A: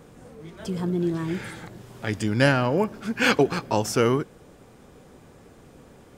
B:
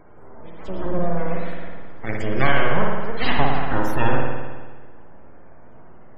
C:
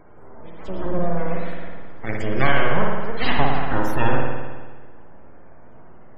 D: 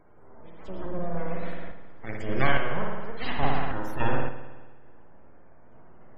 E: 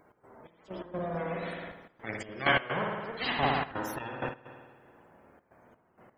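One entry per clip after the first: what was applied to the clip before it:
full-wave rectification; spectral peaks only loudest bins 64; spring reverb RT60 1.4 s, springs 53 ms, chirp 65 ms, DRR −1 dB; level +1.5 dB
no processing that can be heard
sample-and-hold tremolo, depth 55%; level −4.5 dB
high-pass filter 170 Hz 6 dB per octave; high-shelf EQ 3,200 Hz +9.5 dB; gate pattern "x.xx..x.xxxxxxx" 128 BPM −12 dB

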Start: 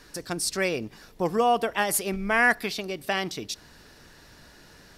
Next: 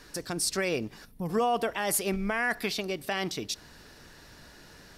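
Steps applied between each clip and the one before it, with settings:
gain on a spectral selection 0:01.05–0:01.29, 280–8,500 Hz −13 dB
brickwall limiter −18.5 dBFS, peak gain reduction 9 dB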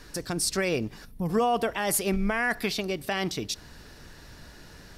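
low-shelf EQ 140 Hz +7.5 dB
level +1.5 dB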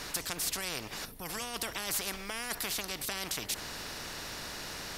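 every bin compressed towards the loudest bin 4 to 1
level −1 dB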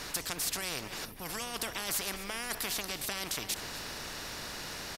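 slap from a distant wall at 43 metres, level −11 dB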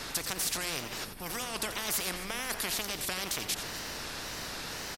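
tape wow and flutter 120 cents
slap from a distant wall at 15 metres, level −10 dB
level +1.5 dB

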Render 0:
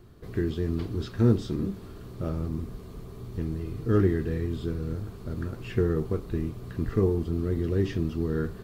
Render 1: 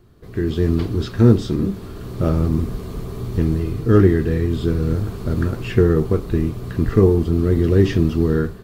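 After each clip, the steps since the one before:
automatic gain control gain up to 13 dB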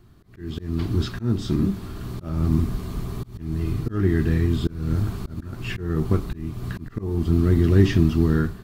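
parametric band 480 Hz −11.5 dB 0.51 octaves
volume swells 327 ms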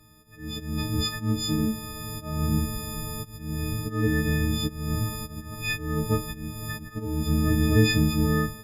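every partial snapped to a pitch grid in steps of 6 semitones
level −3.5 dB
Opus 64 kbit/s 48,000 Hz

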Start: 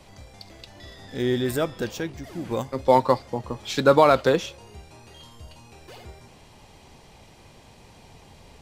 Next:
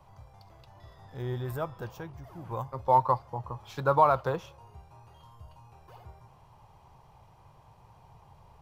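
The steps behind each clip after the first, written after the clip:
octave-band graphic EQ 125/250/500/1,000/2,000/4,000/8,000 Hz +8/−12/−3/+10/−8/−8/−11 dB
level −7.5 dB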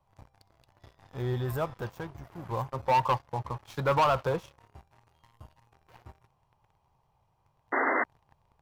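leveller curve on the samples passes 3
sound drawn into the spectrogram noise, 0:07.72–0:08.04, 230–2,100 Hz −18 dBFS
level −8.5 dB

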